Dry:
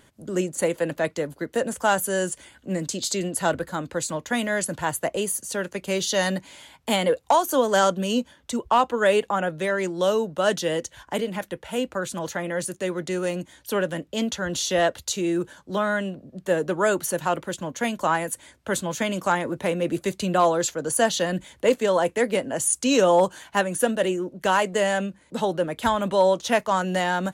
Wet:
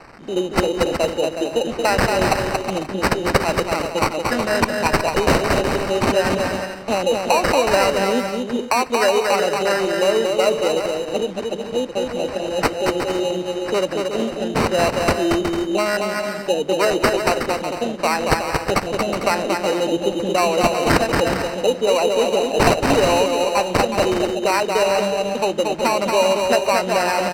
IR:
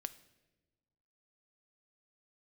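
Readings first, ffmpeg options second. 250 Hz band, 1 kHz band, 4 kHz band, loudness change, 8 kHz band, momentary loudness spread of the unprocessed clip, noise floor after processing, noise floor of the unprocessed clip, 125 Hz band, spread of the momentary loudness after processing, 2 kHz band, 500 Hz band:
+4.5 dB, +5.0 dB, +6.5 dB, +5.0 dB, 0.0 dB, 9 LU, -30 dBFS, -58 dBFS, +5.5 dB, 6 LU, +5.0 dB, +5.5 dB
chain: -filter_complex "[0:a]aeval=exprs='val(0)+0.5*0.0141*sgn(val(0))':c=same,aemphasis=mode=production:type=75fm,afwtdn=0.0708,highpass=310,equalizer=f=3.3k:w=1.1:g=-12.5,acompressor=threshold=-22dB:ratio=3,acrusher=samples=13:mix=1:aa=0.000001,adynamicsmooth=sensitivity=2.5:basefreq=5.6k,aecho=1:1:230|368|450.8|500.5|530.3:0.631|0.398|0.251|0.158|0.1,asplit=2[a][b];[1:a]atrim=start_sample=2205[c];[b][c]afir=irnorm=-1:irlink=0,volume=3dB[d];[a][d]amix=inputs=2:normalize=0,volume=1dB"

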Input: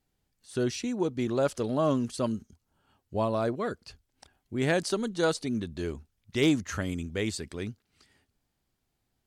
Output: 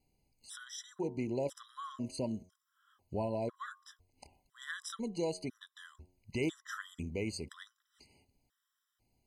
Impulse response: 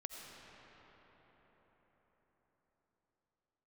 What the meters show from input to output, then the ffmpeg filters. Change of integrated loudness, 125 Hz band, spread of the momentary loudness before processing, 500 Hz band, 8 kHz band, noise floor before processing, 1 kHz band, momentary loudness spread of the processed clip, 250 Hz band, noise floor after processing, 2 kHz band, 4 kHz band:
-9.5 dB, -10.0 dB, 11 LU, -10.0 dB, -8.0 dB, -80 dBFS, -10.0 dB, 19 LU, -10.5 dB, -85 dBFS, -9.0 dB, -10.0 dB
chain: -af "acompressor=threshold=-41dB:ratio=2,bandreject=f=90.91:t=h:w=4,bandreject=f=181.82:t=h:w=4,bandreject=f=272.73:t=h:w=4,bandreject=f=363.64:t=h:w=4,bandreject=f=454.55:t=h:w=4,bandreject=f=545.46:t=h:w=4,bandreject=f=636.37:t=h:w=4,bandreject=f=727.28:t=h:w=4,bandreject=f=818.19:t=h:w=4,bandreject=f=909.1:t=h:w=4,bandreject=f=1.00001k:t=h:w=4,bandreject=f=1.09092k:t=h:w=4,bandreject=f=1.18183k:t=h:w=4,afftfilt=real='re*gt(sin(2*PI*1*pts/sr)*(1-2*mod(floor(b*sr/1024/1000),2)),0)':imag='im*gt(sin(2*PI*1*pts/sr)*(1-2*mod(floor(b*sr/1024/1000),2)),0)':win_size=1024:overlap=0.75,volume=2dB"

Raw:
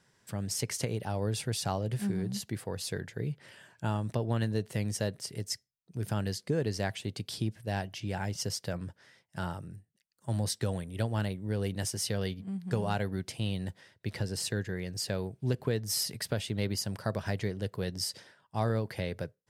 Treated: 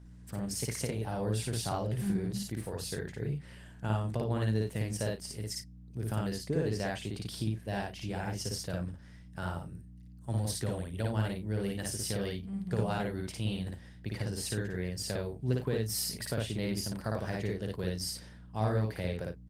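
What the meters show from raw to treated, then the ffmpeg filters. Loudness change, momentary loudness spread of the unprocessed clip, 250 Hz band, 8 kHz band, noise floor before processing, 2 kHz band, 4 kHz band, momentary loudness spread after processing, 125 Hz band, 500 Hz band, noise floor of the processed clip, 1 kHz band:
-1.0 dB, 8 LU, -0.5 dB, -2.0 dB, -74 dBFS, -1.5 dB, -3.0 dB, 9 LU, -0.5 dB, -0.5 dB, -51 dBFS, -1.0 dB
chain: -af "aeval=exprs='val(0)+0.00447*(sin(2*PI*60*n/s)+sin(2*PI*2*60*n/s)/2+sin(2*PI*3*60*n/s)/3+sin(2*PI*4*60*n/s)/4+sin(2*PI*5*60*n/s)/5)':c=same,aecho=1:1:55.39|90.38:0.891|0.282,volume=-3dB" -ar 48000 -c:a libopus -b:a 24k

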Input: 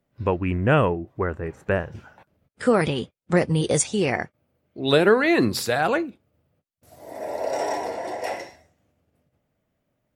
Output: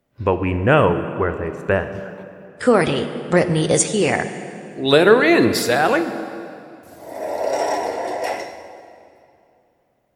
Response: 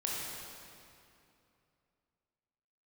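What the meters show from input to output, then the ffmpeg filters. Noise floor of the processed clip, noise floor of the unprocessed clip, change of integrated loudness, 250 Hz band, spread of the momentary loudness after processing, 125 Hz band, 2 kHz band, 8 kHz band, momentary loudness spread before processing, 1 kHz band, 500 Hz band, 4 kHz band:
-64 dBFS, -76 dBFS, +4.5 dB, +4.5 dB, 18 LU, +2.5 dB, +5.5 dB, +5.0 dB, 14 LU, +5.5 dB, +5.5 dB, +5.0 dB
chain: -filter_complex "[0:a]asplit=2[a][b];[b]highpass=f=180:w=0.5412,highpass=f=180:w=1.3066[c];[1:a]atrim=start_sample=2205,lowshelf=f=130:g=11.5[d];[c][d]afir=irnorm=-1:irlink=0,volume=-11dB[e];[a][e]amix=inputs=2:normalize=0,volume=3dB"

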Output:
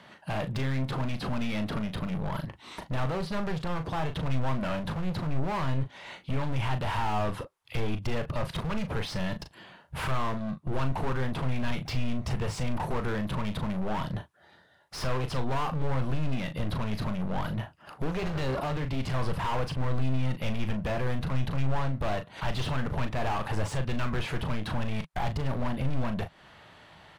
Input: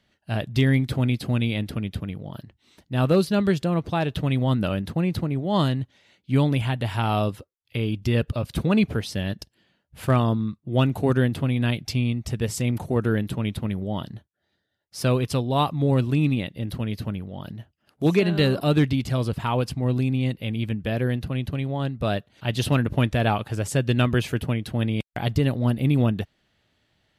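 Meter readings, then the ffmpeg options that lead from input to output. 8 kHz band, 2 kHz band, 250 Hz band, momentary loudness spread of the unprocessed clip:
-8.0 dB, -5.0 dB, -9.5 dB, 10 LU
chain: -filter_complex "[0:a]acrossover=split=6200[a][b];[b]acompressor=threshold=-52dB:ratio=4:attack=1:release=60[c];[a][c]amix=inputs=2:normalize=0,equalizer=f=160:t=o:w=0.67:g=10,equalizer=f=1k:t=o:w=0.67:g=8,equalizer=f=10k:t=o:w=0.67:g=8,acompressor=threshold=-32dB:ratio=3,asplit=2[d][e];[e]highpass=f=720:p=1,volume=26dB,asoftclip=type=tanh:threshold=-20.5dB[f];[d][f]amix=inputs=2:normalize=0,lowpass=f=1.4k:p=1,volume=-6dB,volume=28dB,asoftclip=hard,volume=-28dB,asubboost=boost=4.5:cutoff=79,asplit=2[g][h];[h]adelay=38,volume=-9dB[i];[g][i]amix=inputs=2:normalize=0"

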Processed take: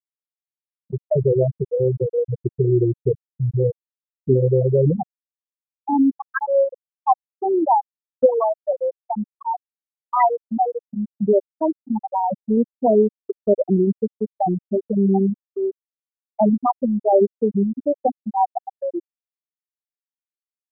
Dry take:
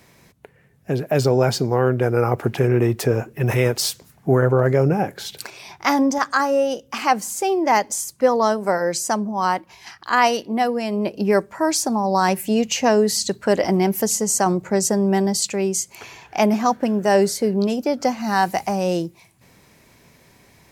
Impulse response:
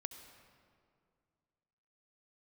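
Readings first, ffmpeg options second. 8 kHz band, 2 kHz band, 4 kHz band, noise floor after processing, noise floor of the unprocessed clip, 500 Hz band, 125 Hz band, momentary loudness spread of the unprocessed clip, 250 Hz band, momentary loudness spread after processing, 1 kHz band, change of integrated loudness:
under -40 dB, -12.5 dB, under -40 dB, under -85 dBFS, -54 dBFS, 0.0 dB, -0.5 dB, 7 LU, -1.0 dB, 11 LU, -1.5 dB, -1.0 dB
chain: -af "afftfilt=real='re*gte(hypot(re,im),0.891)':imag='im*gte(hypot(re,im),0.891)':win_size=1024:overlap=0.75,agate=range=-33dB:threshold=-35dB:ratio=3:detection=peak,volume=2.5dB"

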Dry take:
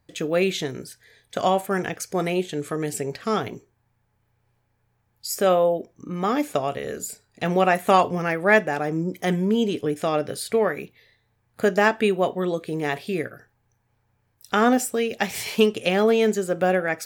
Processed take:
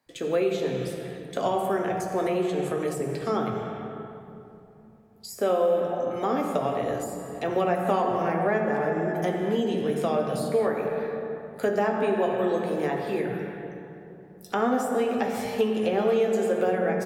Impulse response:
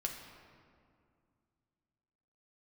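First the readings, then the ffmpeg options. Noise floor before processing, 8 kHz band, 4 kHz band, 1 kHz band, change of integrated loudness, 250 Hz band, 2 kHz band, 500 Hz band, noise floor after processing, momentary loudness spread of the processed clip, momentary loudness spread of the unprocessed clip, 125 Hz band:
-70 dBFS, -9.5 dB, -8.5 dB, -3.5 dB, -3.5 dB, -3.0 dB, -8.5 dB, -1.5 dB, -49 dBFS, 11 LU, 11 LU, -3.5 dB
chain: -filter_complex "[0:a]acrossover=split=190[a][b];[a]adelay=60[c];[c][b]amix=inputs=2:normalize=0[d];[1:a]atrim=start_sample=2205,asetrate=31311,aresample=44100[e];[d][e]afir=irnorm=-1:irlink=0,acrossover=split=470|1200[f][g][h];[f]acompressor=threshold=-23dB:ratio=4[i];[g]acompressor=threshold=-24dB:ratio=4[j];[h]acompressor=threshold=-39dB:ratio=4[k];[i][j][k]amix=inputs=3:normalize=0,volume=-2dB"

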